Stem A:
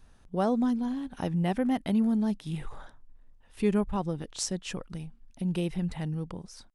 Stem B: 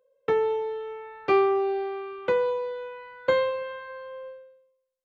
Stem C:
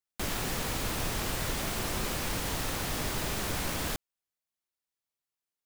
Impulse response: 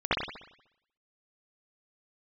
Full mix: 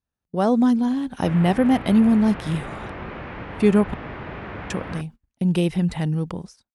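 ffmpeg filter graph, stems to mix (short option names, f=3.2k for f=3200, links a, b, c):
-filter_complex "[0:a]agate=range=-27dB:threshold=-45dB:ratio=16:detection=peak,volume=1.5dB,asplit=3[a][b][c];[a]atrim=end=3.94,asetpts=PTS-STARTPTS,afade=t=out:st=3.936:d=0.004:c=hsin[d];[b]atrim=start=3.94:end=4.7,asetpts=PTS-STARTPTS,volume=0[e];[c]atrim=start=4.7,asetpts=PTS-STARTPTS,afade=t=in:d=0.004:c=hsin[f];[d][e][f]concat=n=3:v=0:a=1[g];[2:a]lowpass=f=2.3k:w=0.5412,lowpass=f=2.3k:w=1.3066,adelay=1050,volume=-6.5dB[h];[g][h]amix=inputs=2:normalize=0,highpass=56,dynaudnorm=f=170:g=5:m=8dB"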